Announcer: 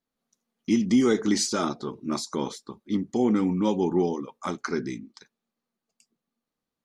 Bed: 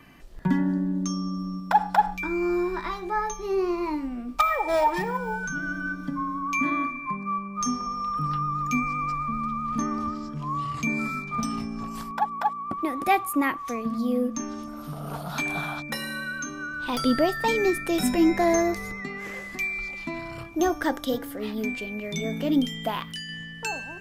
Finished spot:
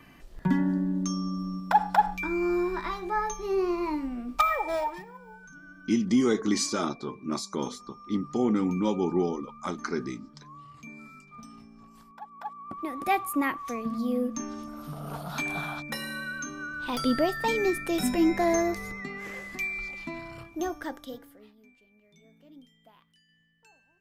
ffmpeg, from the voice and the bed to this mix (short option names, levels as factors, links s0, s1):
-filter_complex "[0:a]adelay=5200,volume=0.75[s0];[1:a]volume=5.01,afade=t=out:st=4.48:d=0.57:silence=0.141254,afade=t=in:st=12.27:d=0.98:silence=0.16788,afade=t=out:st=19.86:d=1.7:silence=0.0473151[s1];[s0][s1]amix=inputs=2:normalize=0"